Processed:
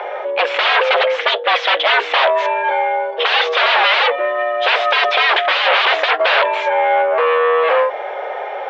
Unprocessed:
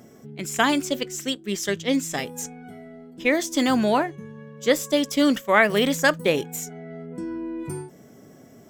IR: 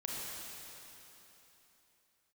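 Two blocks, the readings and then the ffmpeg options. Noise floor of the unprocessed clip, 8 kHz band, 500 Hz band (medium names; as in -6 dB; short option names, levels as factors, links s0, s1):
-49 dBFS, under -10 dB, +9.0 dB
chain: -filter_complex "[0:a]asplit=2[s0][s1];[s1]highpass=f=720:p=1,volume=10,asoftclip=type=tanh:threshold=0.631[s2];[s0][s2]amix=inputs=2:normalize=0,lowpass=f=1600:p=1,volume=0.501,aeval=exprs='0.562*sin(PI/2*8.91*val(0)/0.562)':c=same,highpass=f=360:t=q:w=0.5412,highpass=f=360:t=q:w=1.307,lowpass=f=3400:t=q:w=0.5176,lowpass=f=3400:t=q:w=0.7071,lowpass=f=3400:t=q:w=1.932,afreqshift=150,volume=0.708"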